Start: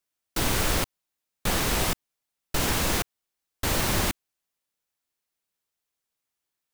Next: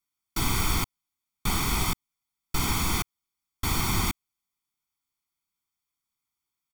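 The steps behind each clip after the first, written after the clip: comb 0.9 ms, depth 92%; trim -4.5 dB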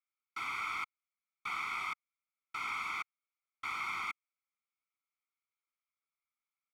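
two resonant band-passes 1.7 kHz, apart 0.73 oct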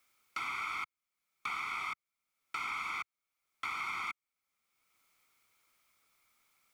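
three bands compressed up and down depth 70%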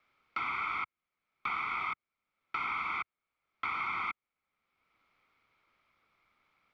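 distance through air 340 m; trim +6 dB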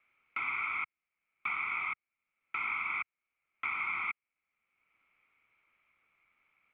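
four-pole ladder low-pass 2.8 kHz, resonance 60%; trim +4.5 dB

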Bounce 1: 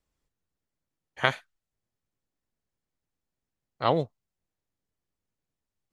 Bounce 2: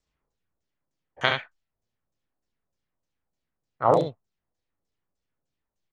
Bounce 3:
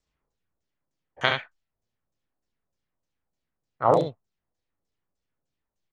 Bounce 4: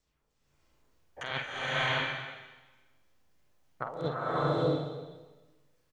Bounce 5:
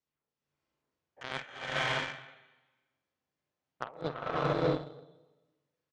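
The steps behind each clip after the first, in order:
LFO low-pass saw down 3.3 Hz 480–7600 Hz; on a send: early reflections 34 ms -8 dB, 70 ms -5 dB; on the sum: trim -1 dB
no audible change
compressor with a negative ratio -31 dBFS, ratio -1; doubling 48 ms -8 dB; swelling reverb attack 620 ms, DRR -9 dB; trim -6 dB
high-pass 120 Hz 12 dB/octave; Chebyshev shaper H 5 -37 dB, 7 -19 dB, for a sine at -16.5 dBFS; distance through air 68 m

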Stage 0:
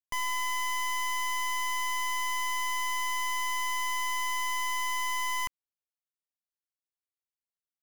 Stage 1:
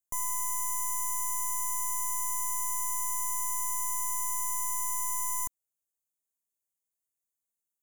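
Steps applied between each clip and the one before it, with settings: FFT filter 640 Hz 0 dB, 1.4 kHz -9 dB, 4.4 kHz -30 dB, 6.5 kHz +9 dB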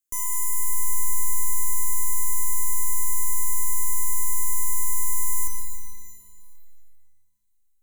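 static phaser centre 320 Hz, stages 4; pitch-shifted reverb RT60 2.1 s, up +12 st, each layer -8 dB, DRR 3.5 dB; trim +4.5 dB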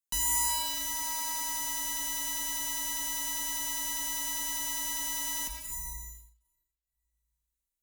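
Chebyshev shaper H 8 -8 dB, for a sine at -10 dBFS; frequency shift -56 Hz; trim -8 dB

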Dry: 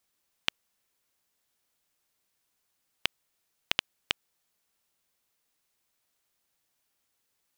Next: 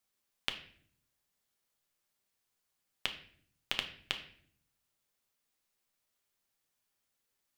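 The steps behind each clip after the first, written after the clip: reverberation RT60 0.55 s, pre-delay 5 ms, DRR 4.5 dB; trim -6 dB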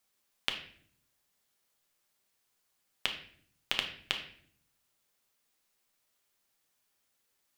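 bass shelf 160 Hz -4.5 dB; in parallel at -1.5 dB: peak limiter -17.5 dBFS, peak gain reduction 7 dB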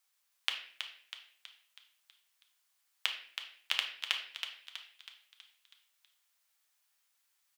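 high-pass 940 Hz 12 dB/octave; on a send: frequency-shifting echo 323 ms, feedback 51%, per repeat +64 Hz, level -7.5 dB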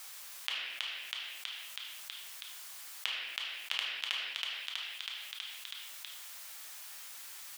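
level flattener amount 70%; trim -4.5 dB

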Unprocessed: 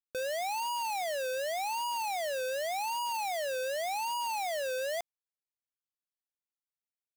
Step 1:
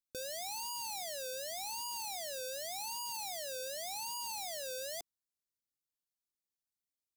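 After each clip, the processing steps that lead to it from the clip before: high-order bell 1.2 kHz -12.5 dB 2.9 oct; trim +1 dB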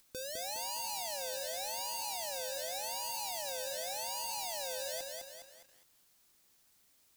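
upward compressor, threshold -48 dBFS; bit-crushed delay 206 ms, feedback 55%, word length 10-bit, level -3 dB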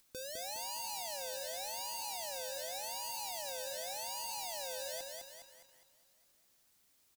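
feedback delay 411 ms, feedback 50%, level -23 dB; trim -2.5 dB

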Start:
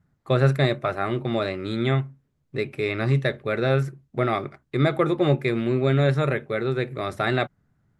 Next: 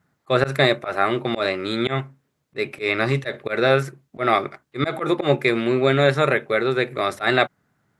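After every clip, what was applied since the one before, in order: high-pass 500 Hz 6 dB/octave; slow attack 103 ms; trim +8.5 dB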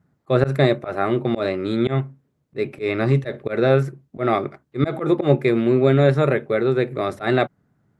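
tilt shelf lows +7 dB, about 700 Hz; trim -1 dB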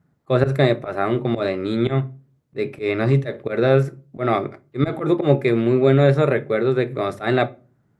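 simulated room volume 180 m³, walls furnished, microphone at 0.32 m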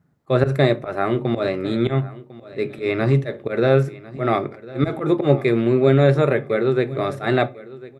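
feedback delay 1050 ms, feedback 23%, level -19 dB

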